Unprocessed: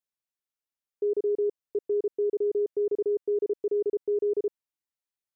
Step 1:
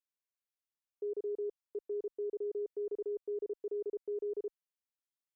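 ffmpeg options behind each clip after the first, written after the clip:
-af "equalizer=f=130:t=o:w=2.3:g=-14,volume=0.473"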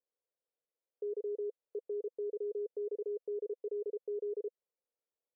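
-af "alimiter=level_in=8.91:limit=0.0631:level=0:latency=1:release=113,volume=0.112,bandpass=f=490:t=q:w=4.7:csg=0,volume=5.96"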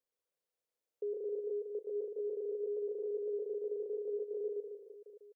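-af "aecho=1:1:120|270|457.5|691.9|984.8:0.631|0.398|0.251|0.158|0.1"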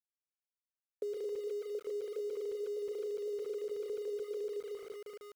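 -af "acompressor=threshold=0.00631:ratio=5,aeval=exprs='val(0)*gte(abs(val(0)),0.0015)':c=same,volume=2.24"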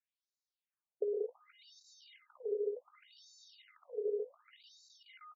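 -filter_complex "[0:a]asplit=2[s0][s1];[s1]adelay=18,volume=0.355[s2];[s0][s2]amix=inputs=2:normalize=0,aecho=1:1:56|188:0.211|0.119,afftfilt=real='re*between(b*sr/1024,490*pow(5300/490,0.5+0.5*sin(2*PI*0.67*pts/sr))/1.41,490*pow(5300/490,0.5+0.5*sin(2*PI*0.67*pts/sr))*1.41)':imag='im*between(b*sr/1024,490*pow(5300/490,0.5+0.5*sin(2*PI*0.67*pts/sr))/1.41,490*pow(5300/490,0.5+0.5*sin(2*PI*0.67*pts/sr))*1.41)':win_size=1024:overlap=0.75,volume=1.68"

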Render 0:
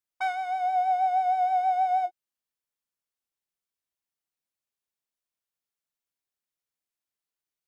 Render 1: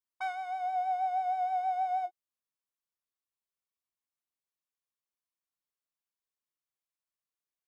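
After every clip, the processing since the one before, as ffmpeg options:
-af "equalizer=f=1100:w=5.6:g=7.5,volume=0.447"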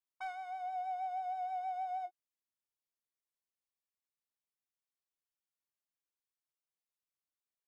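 -af "asoftclip=type=tanh:threshold=0.0501,volume=0.501"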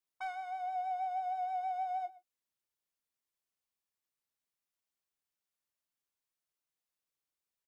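-filter_complex "[0:a]asplit=2[s0][s1];[s1]adelay=122.4,volume=0.112,highshelf=f=4000:g=-2.76[s2];[s0][s2]amix=inputs=2:normalize=0,volume=1.26"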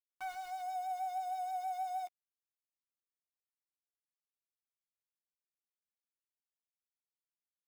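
-filter_complex "[0:a]aeval=exprs='val(0)*gte(abs(val(0)),0.00531)':c=same,asplit=2[s0][s1];[s1]adelay=12,volume=0.2[s2];[s0][s2]amix=inputs=2:normalize=0,volume=0.708"

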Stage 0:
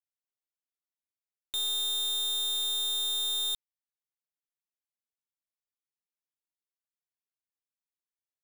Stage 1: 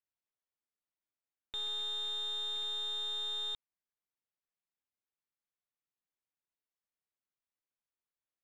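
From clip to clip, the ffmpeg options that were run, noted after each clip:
-af "lowpass=2700"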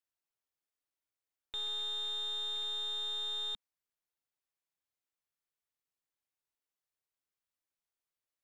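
-af "equalizer=f=210:t=o:w=0.28:g=-12"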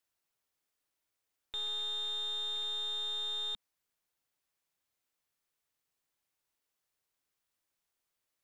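-af "alimiter=level_in=5.31:limit=0.0631:level=0:latency=1,volume=0.188,volume=2.24"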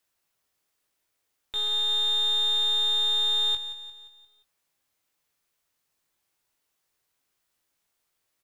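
-filter_complex "[0:a]aeval=exprs='0.0282*(cos(1*acos(clip(val(0)/0.0282,-1,1)))-cos(1*PI/2))+0.00158*(cos(3*acos(clip(val(0)/0.0282,-1,1)))-cos(3*PI/2))+0.000708*(cos(5*acos(clip(val(0)/0.0282,-1,1)))-cos(5*PI/2))':c=same,asplit=2[s0][s1];[s1]adelay=19,volume=0.447[s2];[s0][s2]amix=inputs=2:normalize=0,asplit=2[s3][s4];[s4]aecho=0:1:175|350|525|700|875:0.211|0.108|0.055|0.028|0.0143[s5];[s3][s5]amix=inputs=2:normalize=0,volume=2.24"

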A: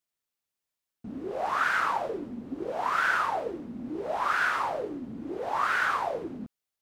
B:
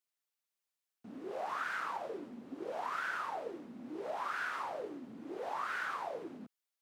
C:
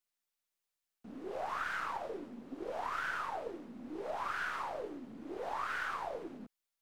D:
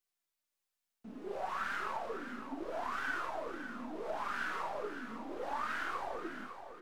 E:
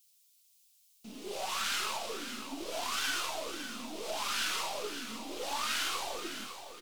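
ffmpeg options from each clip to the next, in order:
-filter_complex "[0:a]highpass=140,lowshelf=f=410:g=-9,acrossover=split=390[s0][s1];[s1]acompressor=threshold=0.0158:ratio=2.5[s2];[s0][s2]amix=inputs=2:normalize=0,volume=0.708"
-af "aeval=exprs='if(lt(val(0),0),0.708*val(0),val(0))':c=same,volume=1.19"
-filter_complex "[0:a]flanger=delay=2.5:depth=2.9:regen=52:speed=0.33:shape=triangular,asplit=2[s0][s1];[s1]adelay=36,volume=0.237[s2];[s0][s2]amix=inputs=2:normalize=0,aecho=1:1:556|1112|1668|2224:0.335|0.124|0.0459|0.017,volume=1.5"
-filter_complex "[0:a]aexciter=amount=6.9:drive=6.8:freq=2500,asplit=2[s0][s1];[s1]adelay=14,volume=0.251[s2];[s0][s2]amix=inputs=2:normalize=0"

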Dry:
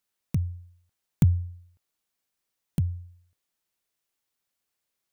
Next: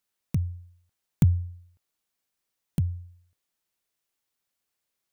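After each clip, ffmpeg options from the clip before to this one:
-af anull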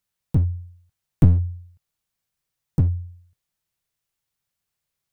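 -af "lowshelf=f=190:t=q:w=1.5:g=8,aeval=exprs='clip(val(0),-1,0.133)':c=same"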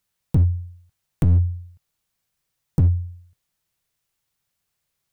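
-af "alimiter=limit=0.211:level=0:latency=1:release=42,volume=1.68"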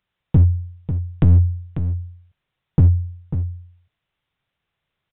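-filter_complex "[0:a]asplit=2[s0][s1];[s1]aecho=0:1:544:0.316[s2];[s0][s2]amix=inputs=2:normalize=0,aresample=8000,aresample=44100,volume=1.58"

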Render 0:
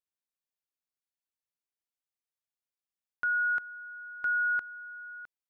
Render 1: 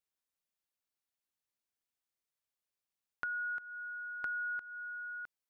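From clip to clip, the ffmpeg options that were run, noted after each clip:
-af "acompressor=threshold=0.0126:ratio=6,volume=1.12"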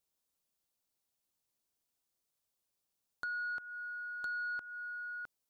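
-af "equalizer=f=1900:t=o:w=1.5:g=-8,asoftclip=type=tanh:threshold=0.0112,volume=2.24"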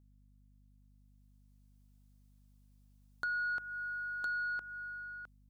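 -af "dynaudnorm=f=390:g=7:m=3.55,aeval=exprs='val(0)+0.00178*(sin(2*PI*50*n/s)+sin(2*PI*2*50*n/s)/2+sin(2*PI*3*50*n/s)/3+sin(2*PI*4*50*n/s)/4+sin(2*PI*5*50*n/s)/5)':c=same,volume=0.398"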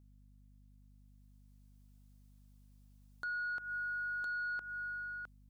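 -af "alimiter=level_in=4.73:limit=0.0631:level=0:latency=1:release=118,volume=0.211,volume=1.33"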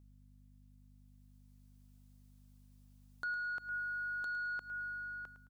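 -af "aecho=1:1:108|216|324|432:0.251|0.0879|0.0308|0.0108,volume=1.12"

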